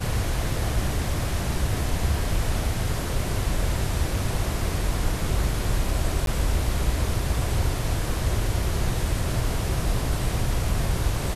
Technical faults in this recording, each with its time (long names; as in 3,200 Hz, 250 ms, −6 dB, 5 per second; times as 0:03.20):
0:06.26–0:06.27: drop-out 12 ms